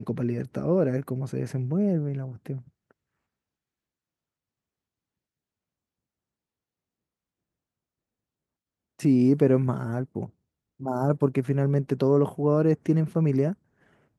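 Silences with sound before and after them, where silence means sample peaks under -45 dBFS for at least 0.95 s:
2.91–8.99

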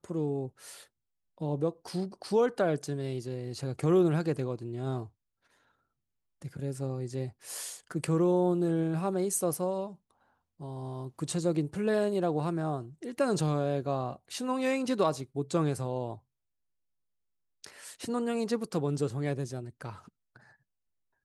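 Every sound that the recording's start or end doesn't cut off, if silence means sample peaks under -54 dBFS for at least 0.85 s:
6.42–16.19

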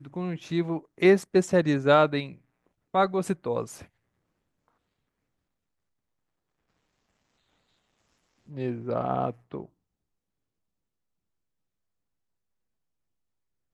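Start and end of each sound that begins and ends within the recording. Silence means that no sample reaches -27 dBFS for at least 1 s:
8.58–9.6

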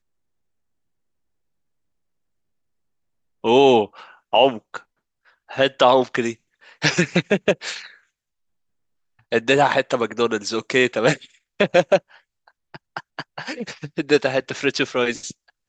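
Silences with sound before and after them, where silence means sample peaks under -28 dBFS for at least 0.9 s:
7.82–9.32

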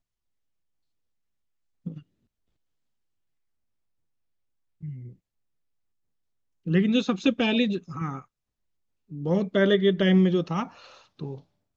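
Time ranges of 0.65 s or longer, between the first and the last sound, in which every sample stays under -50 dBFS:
2.02–4.81
5.14–6.66
8.25–9.1

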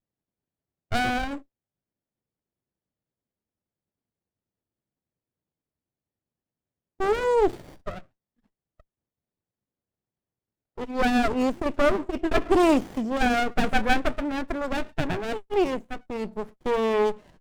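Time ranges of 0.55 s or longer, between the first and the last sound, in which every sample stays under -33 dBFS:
1.38–7
7.99–10.78

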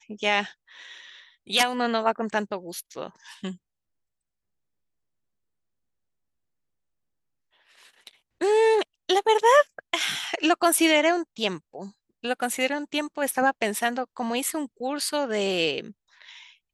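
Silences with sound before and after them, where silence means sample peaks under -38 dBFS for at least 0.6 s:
3.54–8.07

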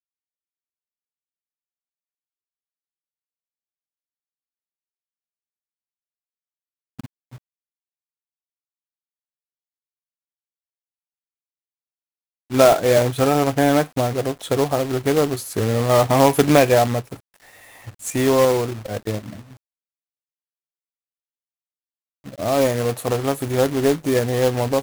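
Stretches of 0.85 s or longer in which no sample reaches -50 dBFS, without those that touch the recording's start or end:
7.38–12.5
19.57–22.24

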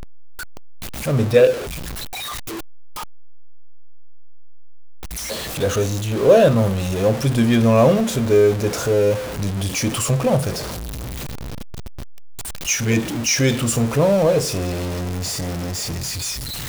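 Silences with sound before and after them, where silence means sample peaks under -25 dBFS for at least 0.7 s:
1.59–5.17
10.61–12.67

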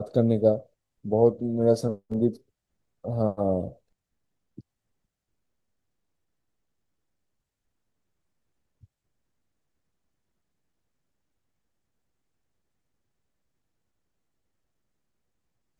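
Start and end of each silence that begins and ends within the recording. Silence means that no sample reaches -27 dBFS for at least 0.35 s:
0.57–1.06
2.3–3.06

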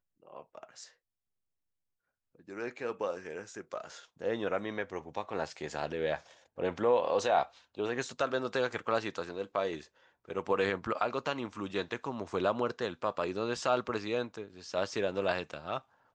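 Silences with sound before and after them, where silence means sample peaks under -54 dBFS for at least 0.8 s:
0.91–2.35

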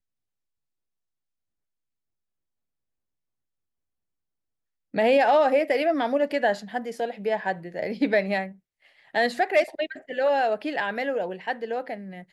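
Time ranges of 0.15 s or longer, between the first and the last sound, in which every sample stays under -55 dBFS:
8.59–8.82

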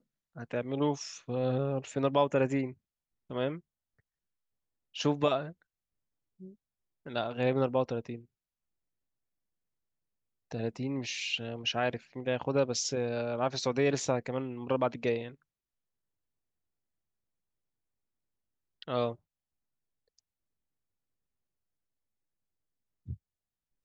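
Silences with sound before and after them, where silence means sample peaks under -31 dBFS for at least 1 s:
3.54–4.97
5.43–7.16
8.15–10.52
15.27–18.82
19.11–23.11

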